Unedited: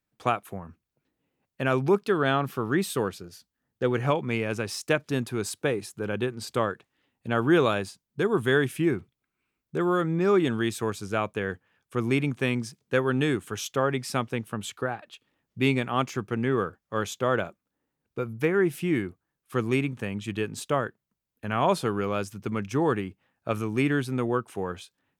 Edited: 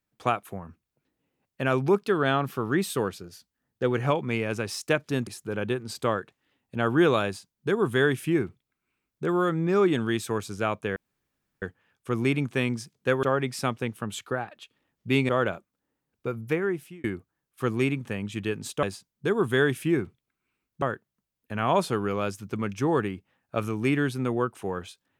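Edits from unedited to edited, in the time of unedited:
5.27–5.79 s: delete
7.77–9.76 s: copy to 20.75 s
11.48 s: insert room tone 0.66 s
13.09–13.74 s: delete
15.80–17.21 s: delete
18.35–18.96 s: fade out

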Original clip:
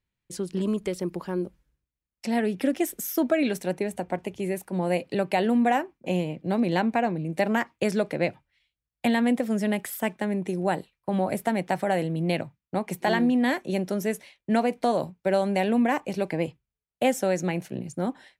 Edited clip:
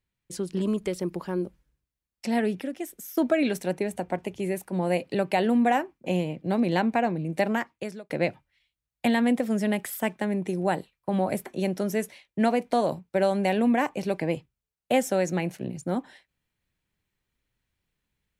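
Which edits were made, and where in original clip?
2.61–3.17 s: gain -8.5 dB
7.40–8.10 s: fade out
11.46–13.57 s: delete

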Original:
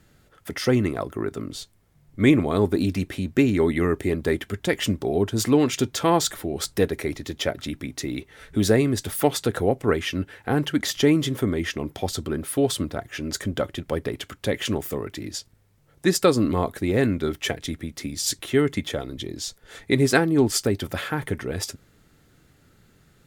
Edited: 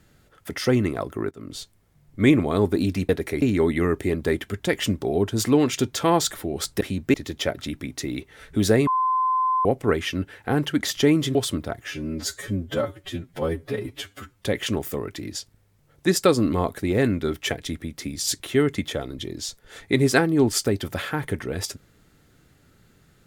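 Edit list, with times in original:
1.31–1.57 s: fade in, from -23.5 dB
3.09–3.42 s: swap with 6.81–7.14 s
8.87–9.65 s: bleep 1.03 kHz -18.5 dBFS
11.35–12.62 s: delete
13.15–14.43 s: stretch 2×

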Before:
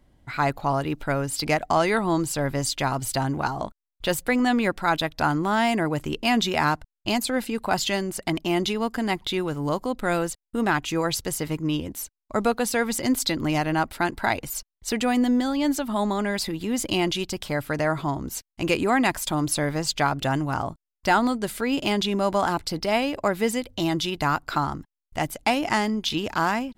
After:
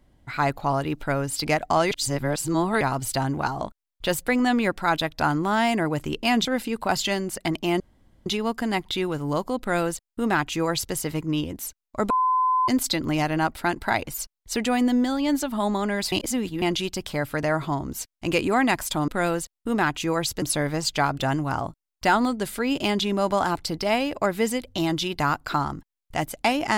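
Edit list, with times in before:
1.91–2.81 s: reverse
6.45–7.27 s: delete
8.62 s: insert room tone 0.46 s
9.96–11.30 s: copy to 19.44 s
12.46–13.04 s: bleep 1.02 kHz -18 dBFS
16.48–16.98 s: reverse

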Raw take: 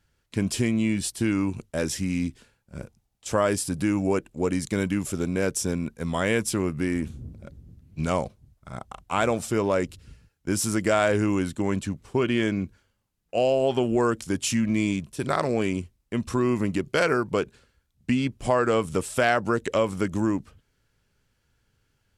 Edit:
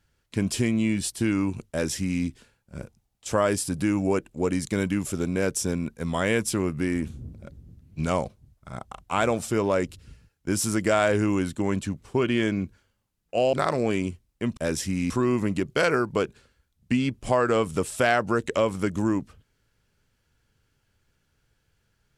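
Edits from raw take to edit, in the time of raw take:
1.70–2.23 s: copy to 16.28 s
13.53–15.24 s: delete

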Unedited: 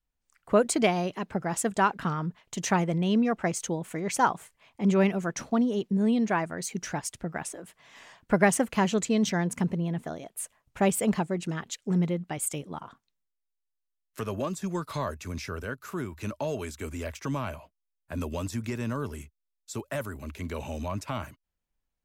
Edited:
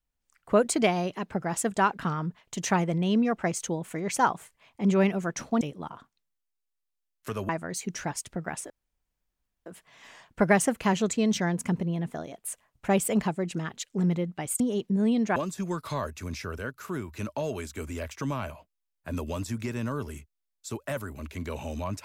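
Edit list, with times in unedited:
5.61–6.37 s: swap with 12.52–14.40 s
7.58 s: insert room tone 0.96 s

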